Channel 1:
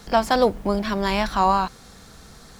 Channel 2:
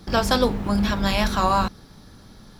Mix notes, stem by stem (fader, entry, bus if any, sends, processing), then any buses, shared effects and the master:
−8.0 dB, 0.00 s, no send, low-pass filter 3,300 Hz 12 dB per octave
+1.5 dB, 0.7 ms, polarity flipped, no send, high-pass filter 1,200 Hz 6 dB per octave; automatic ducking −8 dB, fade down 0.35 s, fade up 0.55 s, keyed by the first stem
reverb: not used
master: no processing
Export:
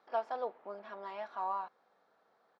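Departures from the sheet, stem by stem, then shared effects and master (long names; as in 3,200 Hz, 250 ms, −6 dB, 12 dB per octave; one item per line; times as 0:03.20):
stem 1: missing low-pass filter 3,300 Hz 12 dB per octave
master: extra four-pole ladder band-pass 790 Hz, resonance 25%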